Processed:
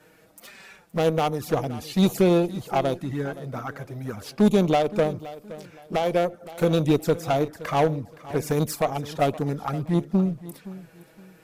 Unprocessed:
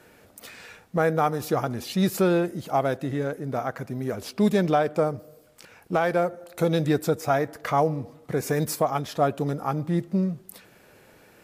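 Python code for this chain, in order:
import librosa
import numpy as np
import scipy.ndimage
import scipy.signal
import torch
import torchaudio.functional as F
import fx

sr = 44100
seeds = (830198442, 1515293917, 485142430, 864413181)

p1 = np.clip(x, -10.0 ** (-15.5 / 20.0), 10.0 ** (-15.5 / 20.0))
p2 = fx.env_flanger(p1, sr, rest_ms=6.9, full_db=-20.5)
p3 = fx.cheby_harmonics(p2, sr, harmonics=(3, 4), levels_db=(-19, -24), full_scale_db=-15.0)
p4 = p3 + fx.echo_feedback(p3, sr, ms=519, feedback_pct=29, wet_db=-17, dry=0)
y = p4 * librosa.db_to_amplitude(4.5)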